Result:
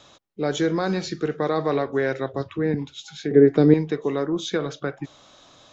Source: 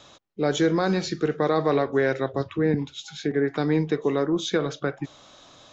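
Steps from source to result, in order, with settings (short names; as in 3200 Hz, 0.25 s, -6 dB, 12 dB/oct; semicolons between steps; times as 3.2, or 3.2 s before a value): 3.31–3.74 resonant low shelf 650 Hz +9 dB, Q 1.5; gain -1 dB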